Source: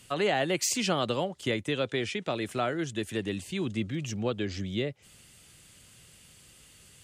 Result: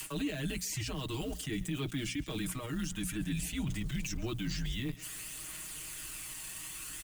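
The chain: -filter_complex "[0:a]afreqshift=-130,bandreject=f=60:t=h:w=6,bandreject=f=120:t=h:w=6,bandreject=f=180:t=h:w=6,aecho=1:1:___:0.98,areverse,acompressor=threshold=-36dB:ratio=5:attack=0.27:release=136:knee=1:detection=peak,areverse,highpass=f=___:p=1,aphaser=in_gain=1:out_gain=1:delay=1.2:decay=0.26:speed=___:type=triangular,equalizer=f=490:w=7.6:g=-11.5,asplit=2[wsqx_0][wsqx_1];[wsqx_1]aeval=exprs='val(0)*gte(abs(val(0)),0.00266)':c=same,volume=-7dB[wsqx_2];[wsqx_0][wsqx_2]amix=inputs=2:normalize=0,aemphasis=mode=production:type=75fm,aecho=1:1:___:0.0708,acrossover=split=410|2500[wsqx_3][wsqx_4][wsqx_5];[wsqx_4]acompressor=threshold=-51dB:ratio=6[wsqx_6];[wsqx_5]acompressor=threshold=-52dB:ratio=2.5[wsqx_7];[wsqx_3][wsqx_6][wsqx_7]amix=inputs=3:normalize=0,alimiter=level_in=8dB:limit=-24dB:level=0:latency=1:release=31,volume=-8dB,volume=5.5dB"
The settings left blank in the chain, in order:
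6.4, 58, 0.54, 134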